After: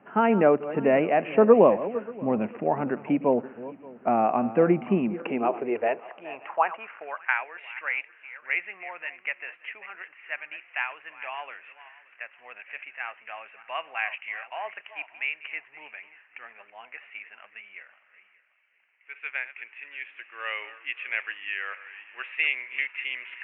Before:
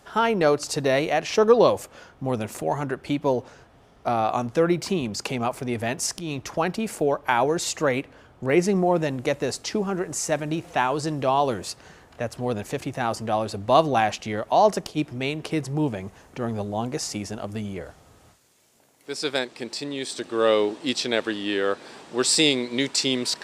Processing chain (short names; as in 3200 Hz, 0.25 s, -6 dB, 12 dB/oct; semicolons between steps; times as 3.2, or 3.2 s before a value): regenerating reverse delay 0.29 s, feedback 45%, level -14 dB; steep low-pass 2800 Hz 96 dB/oct; dynamic EQ 680 Hz, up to +4 dB, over -32 dBFS, Q 1.6; high-pass sweep 210 Hz -> 2100 Hz, 5.02–7.49; gain -3.5 dB